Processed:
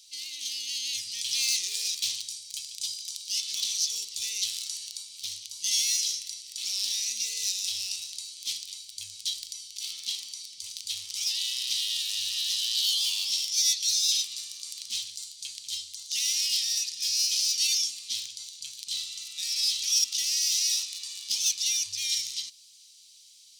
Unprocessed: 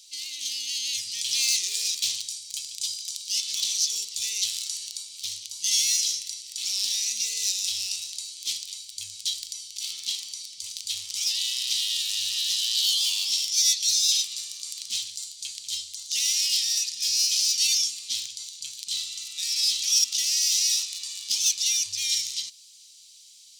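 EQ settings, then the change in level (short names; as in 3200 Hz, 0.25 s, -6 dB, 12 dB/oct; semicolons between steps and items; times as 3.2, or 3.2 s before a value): bell 7300 Hz -3.5 dB 0.25 oct; -2.5 dB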